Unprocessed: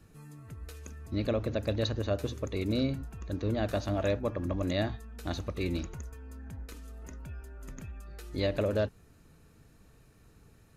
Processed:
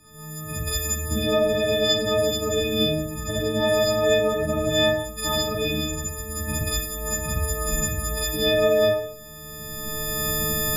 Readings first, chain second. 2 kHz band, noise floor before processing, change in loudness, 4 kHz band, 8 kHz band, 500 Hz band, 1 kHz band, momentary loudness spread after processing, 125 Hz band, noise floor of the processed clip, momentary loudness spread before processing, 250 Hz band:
+15.0 dB, -59 dBFS, +10.0 dB, +18.5 dB, +26.0 dB, +12.0 dB, +12.0 dB, 10 LU, +5.0 dB, -39 dBFS, 16 LU, +6.0 dB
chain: frequency quantiser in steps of 6 st; recorder AGC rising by 19 dB/s; Schroeder reverb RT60 0.67 s, combs from 30 ms, DRR -7 dB

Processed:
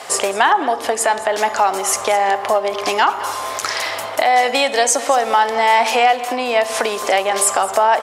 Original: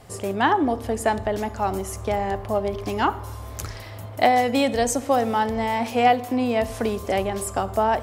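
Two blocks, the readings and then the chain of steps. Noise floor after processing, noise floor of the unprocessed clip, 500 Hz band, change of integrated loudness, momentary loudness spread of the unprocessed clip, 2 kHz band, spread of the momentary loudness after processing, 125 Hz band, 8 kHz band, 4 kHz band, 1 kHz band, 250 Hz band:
-27 dBFS, -37 dBFS, +5.5 dB, +6.5 dB, 12 LU, +10.0 dB, 6 LU, under -10 dB, +14.0 dB, +11.5 dB, +7.5 dB, -5.5 dB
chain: LPF 10000 Hz 12 dB/oct; compressor, threshold -28 dBFS, peak gain reduction 14.5 dB; HPF 720 Hz 12 dB/oct; echo 0.213 s -16.5 dB; maximiser +23 dB; gain -2.5 dB

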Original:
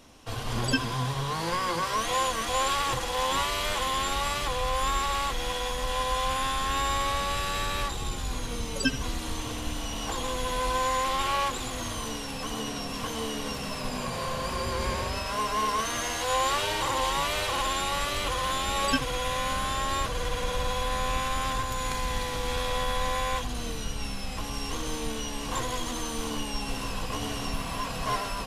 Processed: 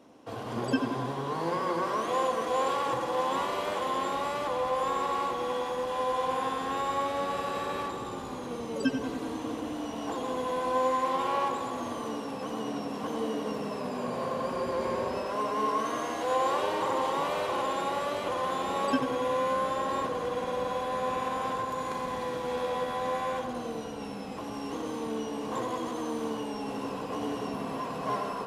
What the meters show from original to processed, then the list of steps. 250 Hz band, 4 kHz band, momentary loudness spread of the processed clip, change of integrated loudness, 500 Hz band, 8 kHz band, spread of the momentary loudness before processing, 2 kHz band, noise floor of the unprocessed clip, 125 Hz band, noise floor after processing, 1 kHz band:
+2.0 dB, -10.5 dB, 7 LU, -2.0 dB, +3.0 dB, -13.0 dB, 7 LU, -6.5 dB, -34 dBFS, -8.5 dB, -38 dBFS, -1.0 dB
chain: HPF 250 Hz 12 dB/oct; tilt shelf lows +9 dB, about 1300 Hz; tape echo 92 ms, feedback 87%, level -7 dB, low-pass 2400 Hz; gain -4.5 dB

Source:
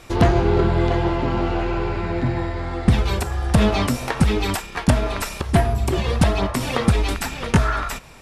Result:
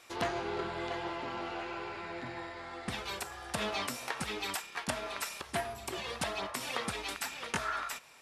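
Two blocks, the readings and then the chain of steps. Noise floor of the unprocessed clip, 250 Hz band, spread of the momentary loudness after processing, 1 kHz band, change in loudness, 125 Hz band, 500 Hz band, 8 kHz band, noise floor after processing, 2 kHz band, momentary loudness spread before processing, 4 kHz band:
-36 dBFS, -21.5 dB, 6 LU, -12.5 dB, -16.0 dB, -28.5 dB, -16.0 dB, -8.5 dB, -51 dBFS, -10.0 dB, 7 LU, -9.0 dB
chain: HPF 1100 Hz 6 dB/oct; gain -8.5 dB

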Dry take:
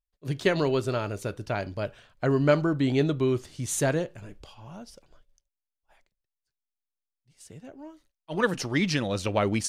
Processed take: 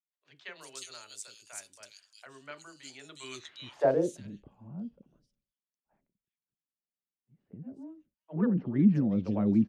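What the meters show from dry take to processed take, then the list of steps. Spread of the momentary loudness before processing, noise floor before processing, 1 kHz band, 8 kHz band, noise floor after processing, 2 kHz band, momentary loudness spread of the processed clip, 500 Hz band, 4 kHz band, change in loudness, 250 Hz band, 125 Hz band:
22 LU, under -85 dBFS, -9.5 dB, -11.0 dB, under -85 dBFS, -15.5 dB, 22 LU, -7.5 dB, -11.0 dB, -1.5 dB, -0.5 dB, -6.0 dB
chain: band-pass sweep 7800 Hz -> 210 Hz, 2.98–4.21; three bands offset in time mids, lows, highs 30/360 ms, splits 470/3000 Hz; gain +7 dB

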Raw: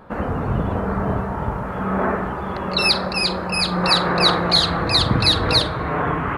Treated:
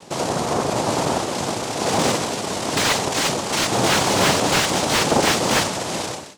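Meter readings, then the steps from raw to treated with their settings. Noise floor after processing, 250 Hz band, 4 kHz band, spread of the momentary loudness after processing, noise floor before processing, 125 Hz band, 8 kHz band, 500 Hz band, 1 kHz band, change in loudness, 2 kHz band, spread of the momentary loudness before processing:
-30 dBFS, -0.5 dB, -3.5 dB, 7 LU, -27 dBFS, -5.0 dB, +14.0 dB, +2.5 dB, +1.0 dB, -0.5 dB, +1.0 dB, 10 LU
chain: ending faded out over 0.73 s; noise vocoder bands 2; slew limiter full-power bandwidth 430 Hz; gain +1.5 dB

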